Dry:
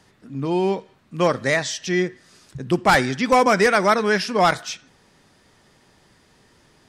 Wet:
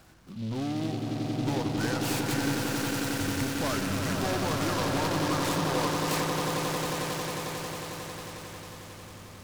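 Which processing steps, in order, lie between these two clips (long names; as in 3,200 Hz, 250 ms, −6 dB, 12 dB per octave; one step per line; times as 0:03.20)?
gliding playback speed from 83% → 63%
notch filter 430 Hz, Q 12
downward compressor, threshold −26 dBFS, peak gain reduction 13.5 dB
soft clipping −28 dBFS, distortion −12 dB
mains hum 50 Hz, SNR 29 dB
on a send: echo that builds up and dies away 90 ms, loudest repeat 8, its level −7 dB
on the sum: short delay modulated by noise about 3,300 Hz, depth 0.063 ms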